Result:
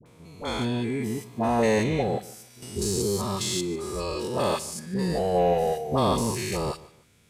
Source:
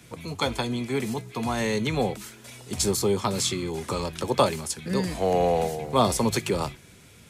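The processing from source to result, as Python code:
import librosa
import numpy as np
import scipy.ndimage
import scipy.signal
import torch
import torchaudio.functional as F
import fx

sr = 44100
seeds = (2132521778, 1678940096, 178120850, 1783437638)

p1 = fx.spec_steps(x, sr, hold_ms=200)
p2 = fx.dynamic_eq(p1, sr, hz=660.0, q=0.77, threshold_db=-43.0, ratio=4.0, max_db=8, at=(1.29, 1.99))
p3 = fx.noise_reduce_blind(p2, sr, reduce_db=11)
p4 = np.clip(p3, -10.0 ** (-28.0 / 20.0), 10.0 ** (-28.0 / 20.0))
p5 = p3 + F.gain(torch.from_numpy(p4), -8.0).numpy()
p6 = fx.dispersion(p5, sr, late='highs', ms=60.0, hz=860.0)
p7 = p6 + fx.echo_feedback(p6, sr, ms=148, feedback_pct=28, wet_db=-19.5, dry=0)
y = fx.band_squash(p7, sr, depth_pct=40, at=(2.62, 4.28))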